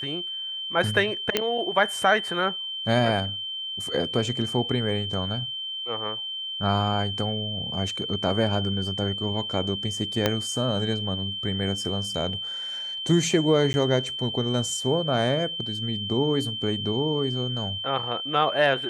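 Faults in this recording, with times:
whine 3.1 kHz -30 dBFS
1.37 s: pop -6 dBFS
10.26 s: pop -6 dBFS
13.73–13.74 s: dropout 10 ms

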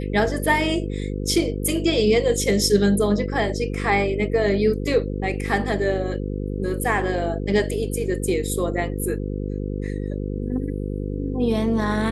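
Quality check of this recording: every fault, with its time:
buzz 50 Hz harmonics 10 -27 dBFS

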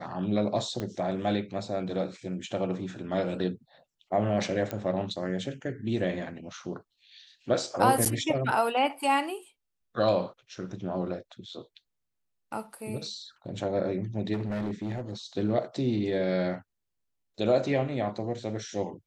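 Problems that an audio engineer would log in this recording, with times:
0.80 s: pop -19 dBFS
4.71 s: pop -17 dBFS
8.05–8.06 s: dropout 8.1 ms
14.33–15.13 s: clipped -28 dBFS

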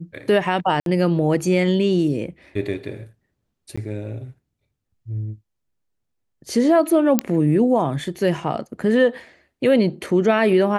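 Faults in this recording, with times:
0.80–0.86 s: dropout 62 ms
3.76–3.77 s: dropout 15 ms
7.19 s: pop -2 dBFS

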